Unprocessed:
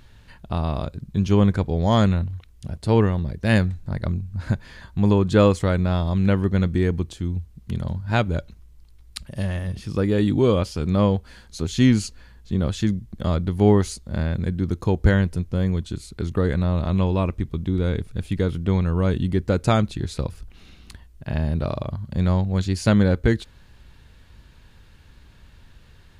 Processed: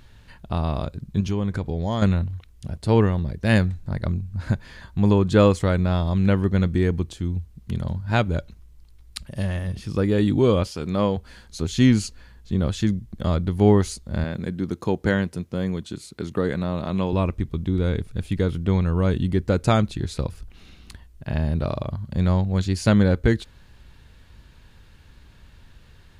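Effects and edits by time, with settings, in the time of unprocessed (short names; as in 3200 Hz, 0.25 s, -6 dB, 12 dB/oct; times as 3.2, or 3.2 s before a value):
1.2–2.02 compressor 3:1, threshold -21 dBFS
10.67–11.17 HPF 230 Hz 6 dB/oct
14.24–17.13 HPF 160 Hz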